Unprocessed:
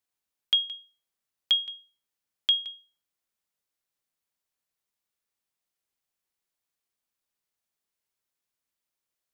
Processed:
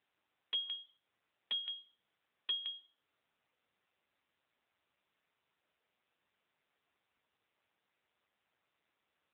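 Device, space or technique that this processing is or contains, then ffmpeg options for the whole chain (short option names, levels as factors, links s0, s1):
voicemail: -af "highpass=300,lowpass=2600,acompressor=threshold=0.0141:ratio=8,volume=2.82" -ar 8000 -c:a libopencore_amrnb -b:a 6700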